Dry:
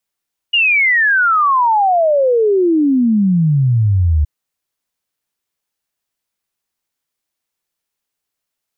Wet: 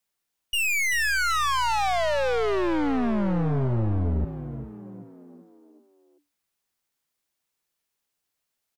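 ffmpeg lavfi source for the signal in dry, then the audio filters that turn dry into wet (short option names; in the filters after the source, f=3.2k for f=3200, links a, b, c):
-f lavfi -i "aevalsrc='0.335*clip(min(t,3.72-t)/0.01,0,1)*sin(2*PI*2900*3.72/log(72/2900)*(exp(log(72/2900)*t/3.72)-1))':d=3.72:s=44100"
-filter_complex "[0:a]aeval=exprs='(tanh(15.8*val(0)+0.45)-tanh(0.45))/15.8':c=same,asplit=6[a][b][c][d][e][f];[b]adelay=386,afreqshift=58,volume=-11dB[g];[c]adelay=772,afreqshift=116,volume=-17.7dB[h];[d]adelay=1158,afreqshift=174,volume=-24.5dB[i];[e]adelay=1544,afreqshift=232,volume=-31.2dB[j];[f]adelay=1930,afreqshift=290,volume=-38dB[k];[a][g][h][i][j][k]amix=inputs=6:normalize=0"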